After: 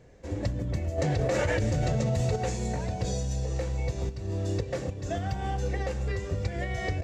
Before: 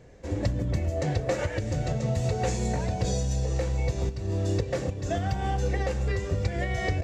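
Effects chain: 0.98–2.36 s: level flattener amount 100%; trim -3 dB

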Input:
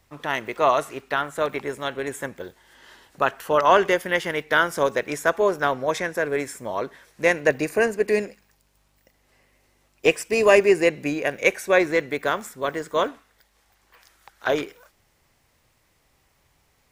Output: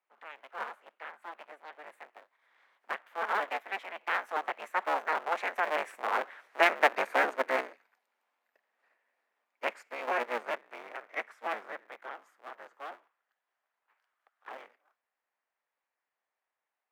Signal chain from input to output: cycle switcher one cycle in 3, inverted; Doppler pass-by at 6.54 s, 34 m/s, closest 26 m; three-band isolator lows -21 dB, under 590 Hz, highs -19 dB, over 2.6 kHz; in parallel at -3 dB: level held to a coarse grid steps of 19 dB; on the sum: elliptic high-pass 210 Hz, stop band 40 dB

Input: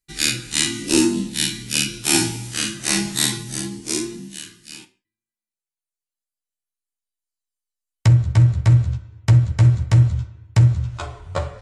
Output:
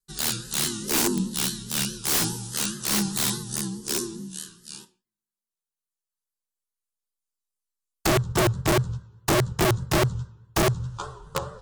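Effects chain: static phaser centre 440 Hz, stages 8; integer overflow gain 16 dB; vibrato 4.8 Hz 85 cents

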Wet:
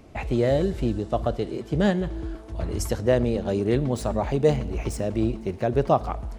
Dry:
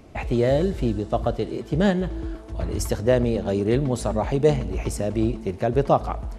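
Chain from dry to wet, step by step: 3.93–6.08 s: median filter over 3 samples; trim -1.5 dB

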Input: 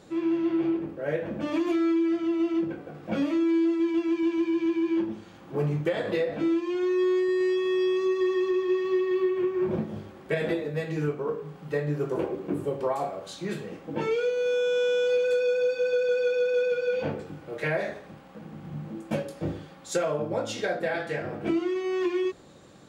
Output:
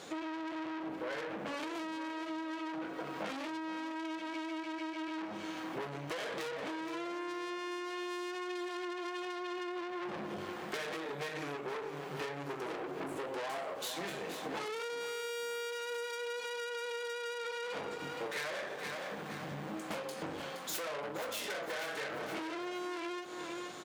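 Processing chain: tracing distortion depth 0.19 ms; speed mistake 25 fps video run at 24 fps; valve stage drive 35 dB, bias 0.6; high-pass 860 Hz 6 dB/octave; feedback delay 470 ms, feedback 42%, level -11.5 dB; compression 6:1, threshold -48 dBFS, peak gain reduction 13 dB; endings held to a fixed fall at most 110 dB/s; trim +12 dB

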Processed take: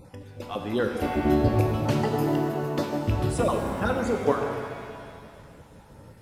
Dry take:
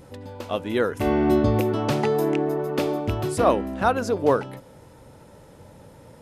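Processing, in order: random holes in the spectrogram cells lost 27%; bass shelf 150 Hz +7 dB; pitch-shifted reverb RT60 2 s, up +7 st, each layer -8 dB, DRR 3 dB; trim -4 dB

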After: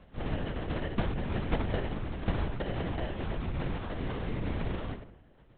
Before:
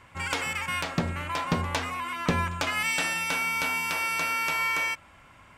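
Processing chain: gain riding 0.5 s; sample-rate reducer 1.2 kHz, jitter 0%; on a send: filtered feedback delay 92 ms, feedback 44%, low-pass 3 kHz, level -8.5 dB; on the sum: LPC vocoder at 8 kHz whisper; trim -4.5 dB

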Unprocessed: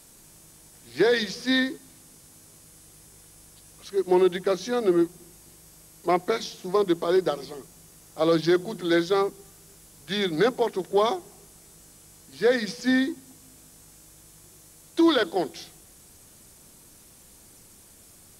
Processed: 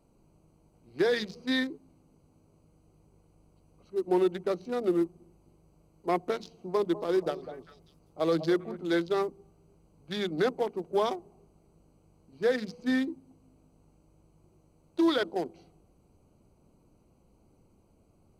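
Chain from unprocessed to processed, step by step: local Wiener filter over 25 samples; 6.38–8.80 s: repeats whose band climbs or falls 198 ms, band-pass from 650 Hz, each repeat 1.4 oct, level -10 dB; trim -5 dB

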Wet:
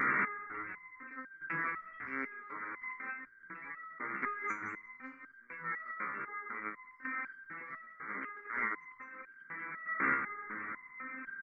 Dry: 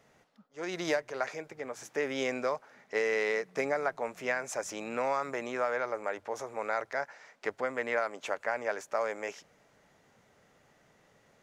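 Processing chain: spectral levelling over time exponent 0.2; low-pass 7.3 kHz; spectral gate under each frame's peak -15 dB strong; FFT filter 240 Hz 0 dB, 680 Hz -27 dB, 1.2 kHz +2 dB; compressor with a negative ratio -31 dBFS, ratio -0.5; square tremolo 0.71 Hz, depth 65%, duty 20%; frequency-shifting echo 192 ms, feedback 32%, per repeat -71 Hz, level -11.5 dB; resonator arpeggio 4 Hz 67–1600 Hz; trim +7.5 dB

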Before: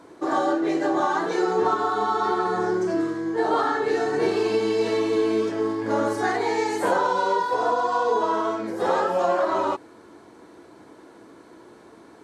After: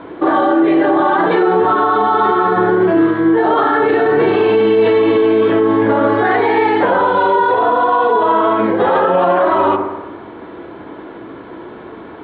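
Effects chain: elliptic low-pass 3.4 kHz, stop band 50 dB; bass shelf 75 Hz +6.5 dB; feedback echo behind a low-pass 61 ms, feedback 67%, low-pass 1.6 kHz, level -11 dB; loudness maximiser +19.5 dB; trim -4 dB

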